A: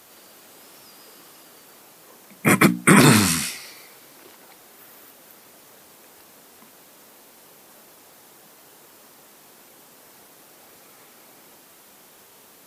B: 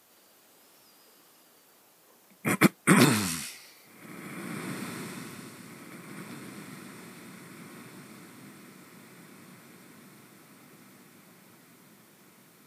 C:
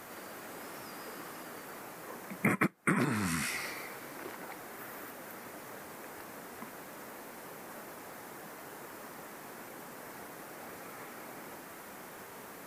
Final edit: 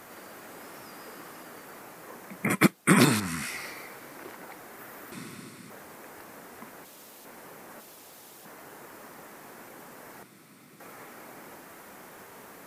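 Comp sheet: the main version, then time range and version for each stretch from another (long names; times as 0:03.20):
C
0:02.50–0:03.20: punch in from B
0:05.12–0:05.70: punch in from B
0:06.85–0:07.25: punch in from A
0:07.80–0:08.45: punch in from A
0:10.23–0:10.80: punch in from B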